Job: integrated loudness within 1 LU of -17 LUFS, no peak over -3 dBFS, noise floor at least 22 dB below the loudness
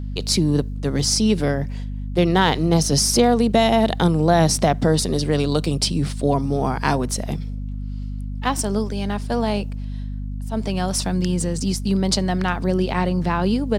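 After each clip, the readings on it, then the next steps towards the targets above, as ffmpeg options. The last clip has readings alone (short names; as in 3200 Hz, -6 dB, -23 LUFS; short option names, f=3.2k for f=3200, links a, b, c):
hum 50 Hz; harmonics up to 250 Hz; hum level -25 dBFS; loudness -20.5 LUFS; peak -2.0 dBFS; loudness target -17.0 LUFS
-> -af "bandreject=f=50:t=h:w=4,bandreject=f=100:t=h:w=4,bandreject=f=150:t=h:w=4,bandreject=f=200:t=h:w=4,bandreject=f=250:t=h:w=4"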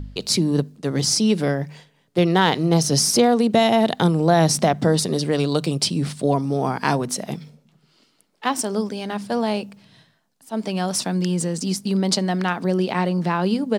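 hum none; loudness -20.5 LUFS; peak -2.5 dBFS; loudness target -17.0 LUFS
-> -af "volume=3.5dB,alimiter=limit=-3dB:level=0:latency=1"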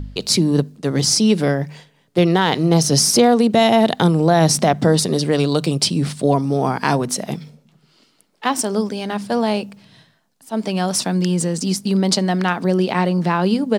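loudness -17.5 LUFS; peak -3.0 dBFS; noise floor -59 dBFS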